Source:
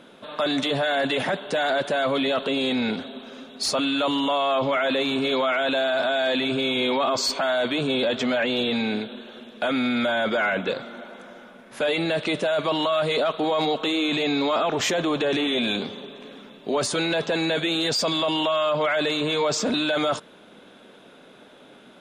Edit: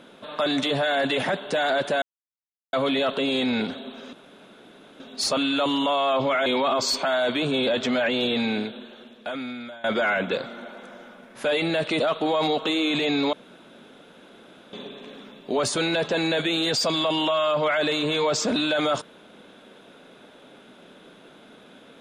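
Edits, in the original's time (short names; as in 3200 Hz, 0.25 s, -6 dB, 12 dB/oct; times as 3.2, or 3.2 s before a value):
2.02 insert silence 0.71 s
3.42 insert room tone 0.87 s
4.88–6.82 cut
8.86–10.2 fade out, to -23 dB
12.36–13.18 cut
14.51–15.91 room tone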